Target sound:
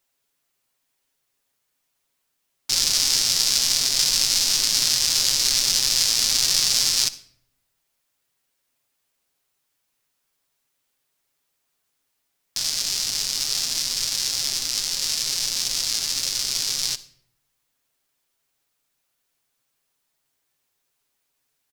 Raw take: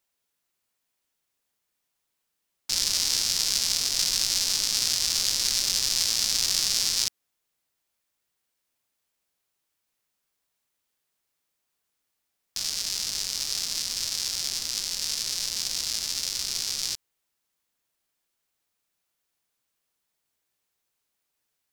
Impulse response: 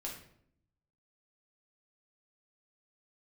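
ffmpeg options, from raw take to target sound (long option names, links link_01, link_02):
-filter_complex "[0:a]aecho=1:1:7.4:0.48,asplit=2[link_01][link_02];[1:a]atrim=start_sample=2205,adelay=63[link_03];[link_02][link_03]afir=irnorm=-1:irlink=0,volume=-16dB[link_04];[link_01][link_04]amix=inputs=2:normalize=0,volume=4dB"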